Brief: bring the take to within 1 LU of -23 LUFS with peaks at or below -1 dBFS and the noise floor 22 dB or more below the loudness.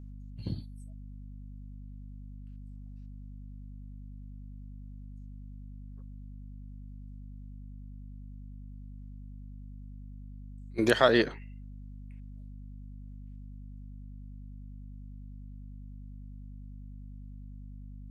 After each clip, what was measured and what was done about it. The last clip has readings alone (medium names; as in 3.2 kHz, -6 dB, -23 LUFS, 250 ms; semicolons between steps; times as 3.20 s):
hum 50 Hz; highest harmonic 250 Hz; hum level -42 dBFS; loudness -38.5 LUFS; peak level -7.0 dBFS; loudness target -23.0 LUFS
-> de-hum 50 Hz, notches 5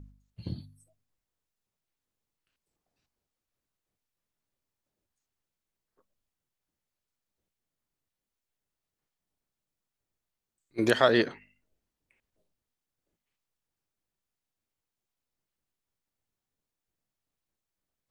hum not found; loudness -25.5 LUFS; peak level -7.0 dBFS; loudness target -23.0 LUFS
-> trim +2.5 dB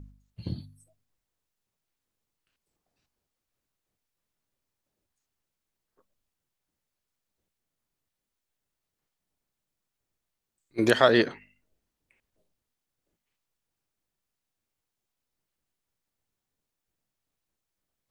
loudness -23.0 LUFS; peak level -4.5 dBFS; noise floor -86 dBFS